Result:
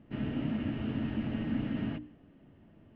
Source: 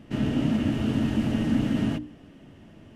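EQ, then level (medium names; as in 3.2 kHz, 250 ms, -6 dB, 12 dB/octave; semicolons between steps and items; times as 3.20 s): distance through air 100 m; dynamic bell 2.4 kHz, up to +6 dB, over -52 dBFS, Q 0.81; distance through air 290 m; -8.5 dB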